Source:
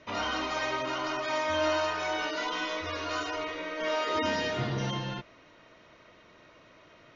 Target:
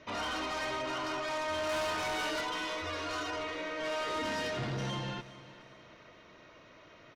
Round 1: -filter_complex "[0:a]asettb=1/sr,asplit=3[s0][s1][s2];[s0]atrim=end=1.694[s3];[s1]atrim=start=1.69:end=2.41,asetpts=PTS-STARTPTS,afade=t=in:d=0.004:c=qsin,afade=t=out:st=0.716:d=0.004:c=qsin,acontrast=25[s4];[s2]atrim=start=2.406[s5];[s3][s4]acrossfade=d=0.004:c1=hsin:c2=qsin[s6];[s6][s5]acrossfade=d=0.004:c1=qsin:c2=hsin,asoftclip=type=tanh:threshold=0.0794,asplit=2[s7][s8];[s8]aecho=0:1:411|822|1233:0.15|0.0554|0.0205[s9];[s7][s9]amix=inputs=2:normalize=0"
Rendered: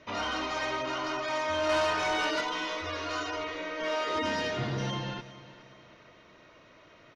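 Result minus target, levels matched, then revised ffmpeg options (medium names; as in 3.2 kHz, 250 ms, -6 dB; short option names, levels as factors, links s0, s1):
saturation: distortion -8 dB
-filter_complex "[0:a]asettb=1/sr,asplit=3[s0][s1][s2];[s0]atrim=end=1.694[s3];[s1]atrim=start=1.69:end=2.41,asetpts=PTS-STARTPTS,afade=t=in:d=0.004:c=qsin,afade=t=out:st=0.716:d=0.004:c=qsin,acontrast=25[s4];[s2]atrim=start=2.406[s5];[s3][s4]acrossfade=d=0.004:c1=hsin:c2=qsin[s6];[s6][s5]acrossfade=d=0.004:c1=qsin:c2=hsin,asoftclip=type=tanh:threshold=0.0266,asplit=2[s7][s8];[s8]aecho=0:1:411|822|1233:0.15|0.0554|0.0205[s9];[s7][s9]amix=inputs=2:normalize=0"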